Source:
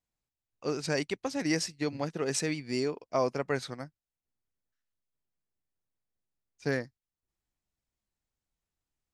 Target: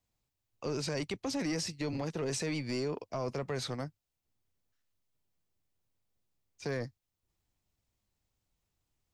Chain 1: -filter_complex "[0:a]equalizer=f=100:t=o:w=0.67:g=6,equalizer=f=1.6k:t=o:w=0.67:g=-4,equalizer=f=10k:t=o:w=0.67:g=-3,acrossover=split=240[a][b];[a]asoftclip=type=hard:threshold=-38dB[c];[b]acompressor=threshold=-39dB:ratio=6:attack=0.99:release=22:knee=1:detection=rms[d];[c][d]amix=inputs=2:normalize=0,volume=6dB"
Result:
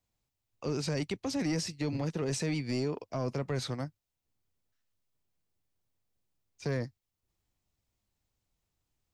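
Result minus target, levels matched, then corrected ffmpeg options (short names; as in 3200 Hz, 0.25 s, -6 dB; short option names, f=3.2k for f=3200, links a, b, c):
hard clip: distortion -6 dB
-filter_complex "[0:a]equalizer=f=100:t=o:w=0.67:g=6,equalizer=f=1.6k:t=o:w=0.67:g=-4,equalizer=f=10k:t=o:w=0.67:g=-3,acrossover=split=240[a][b];[a]asoftclip=type=hard:threshold=-45.5dB[c];[b]acompressor=threshold=-39dB:ratio=6:attack=0.99:release=22:knee=1:detection=rms[d];[c][d]amix=inputs=2:normalize=0,volume=6dB"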